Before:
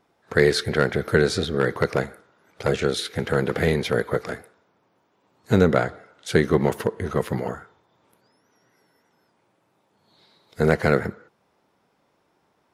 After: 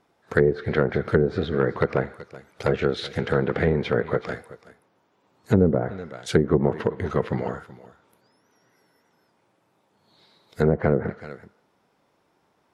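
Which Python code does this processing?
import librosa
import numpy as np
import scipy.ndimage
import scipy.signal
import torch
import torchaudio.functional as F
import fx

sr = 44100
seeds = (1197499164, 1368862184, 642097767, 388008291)

y = x + 10.0 ** (-19.0 / 20.0) * np.pad(x, (int(378 * sr / 1000.0), 0))[:len(x)]
y = fx.env_lowpass_down(y, sr, base_hz=510.0, full_db=-13.5)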